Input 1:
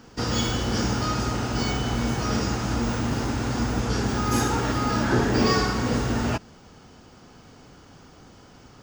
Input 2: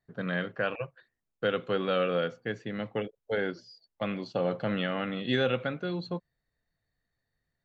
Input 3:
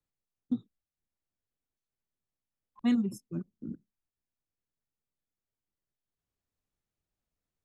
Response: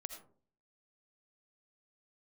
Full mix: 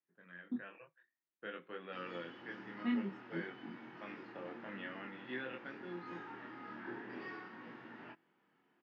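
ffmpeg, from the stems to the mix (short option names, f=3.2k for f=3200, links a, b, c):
-filter_complex "[0:a]adelay=1750,volume=-17.5dB[a];[1:a]dynaudnorm=f=140:g=11:m=10dB,volume=-19dB[b];[2:a]volume=0.5dB[c];[a][b][c]amix=inputs=3:normalize=0,equalizer=f=520:w=0.48:g=-9,flanger=delay=22.5:depth=3:speed=0.52,highpass=f=200:w=0.5412,highpass=f=200:w=1.3066,equalizer=f=230:t=q:w=4:g=-3,equalizer=f=340:t=q:w=4:g=8,equalizer=f=930:t=q:w=4:g=5,equalizer=f=1.8k:t=q:w=4:g=7,lowpass=f=2.8k:w=0.5412,lowpass=f=2.8k:w=1.3066"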